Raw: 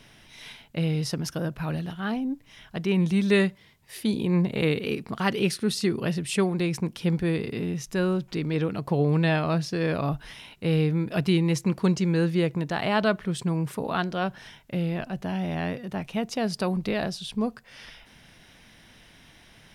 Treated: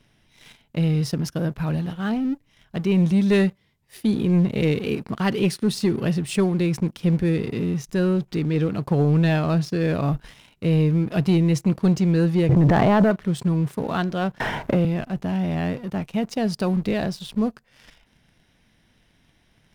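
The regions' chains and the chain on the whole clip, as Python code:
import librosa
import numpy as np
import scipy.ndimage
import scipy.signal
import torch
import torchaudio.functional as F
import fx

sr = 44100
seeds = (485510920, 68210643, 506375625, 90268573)

y = fx.chain(x, sr, fx.lowpass(hz=1500.0, slope=12),
    fx.transient(attack_db=6, sustain_db=11),
    fx.env_flatten(amount_pct=100), at=(12.49, 13.11))
y = fx.chain(y, sr, fx.peak_eq(hz=750.0, db=11.5, octaves=2.7),
    fx.band_squash(depth_pct=100), at=(14.4, 14.85))
y = fx.low_shelf(y, sr, hz=440.0, db=6.5)
y = fx.leveller(y, sr, passes=2)
y = y * 10.0 ** (-7.5 / 20.0)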